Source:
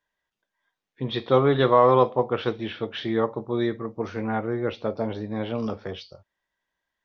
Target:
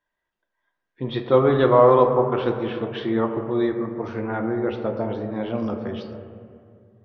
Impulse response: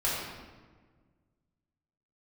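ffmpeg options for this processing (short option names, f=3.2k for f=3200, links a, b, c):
-filter_complex "[0:a]lowpass=f=3.2k:p=1,asplit=2[a][b];[1:a]atrim=start_sample=2205,asetrate=24255,aresample=44100,lowpass=2.2k[c];[b][c]afir=irnorm=-1:irlink=0,volume=-17dB[d];[a][d]amix=inputs=2:normalize=0"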